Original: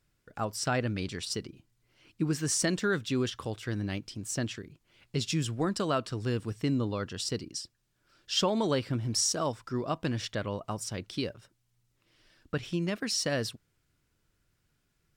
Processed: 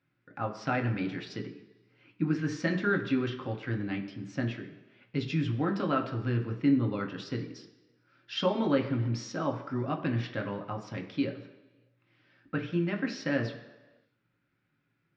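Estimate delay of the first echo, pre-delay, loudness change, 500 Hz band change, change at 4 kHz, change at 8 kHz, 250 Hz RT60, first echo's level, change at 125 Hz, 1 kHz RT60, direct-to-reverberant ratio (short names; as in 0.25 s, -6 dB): none, 3 ms, 0.0 dB, -0.5 dB, -8.0 dB, under -15 dB, 1.0 s, none, +1.0 dB, 1.2 s, 2.5 dB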